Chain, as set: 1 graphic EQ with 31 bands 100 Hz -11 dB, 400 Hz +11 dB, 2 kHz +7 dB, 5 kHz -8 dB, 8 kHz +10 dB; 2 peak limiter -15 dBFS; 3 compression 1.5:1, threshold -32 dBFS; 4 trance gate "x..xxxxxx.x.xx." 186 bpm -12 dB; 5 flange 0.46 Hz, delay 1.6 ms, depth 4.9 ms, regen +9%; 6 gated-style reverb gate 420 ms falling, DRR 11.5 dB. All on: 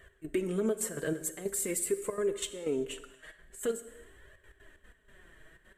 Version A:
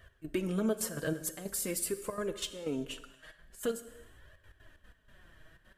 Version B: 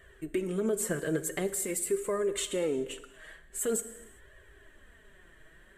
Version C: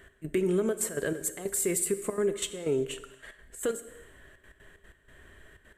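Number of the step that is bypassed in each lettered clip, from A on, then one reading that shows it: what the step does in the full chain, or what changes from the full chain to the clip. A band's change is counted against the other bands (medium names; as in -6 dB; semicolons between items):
1, 500 Hz band -5.0 dB; 4, 1 kHz band +2.0 dB; 5, loudness change +3.5 LU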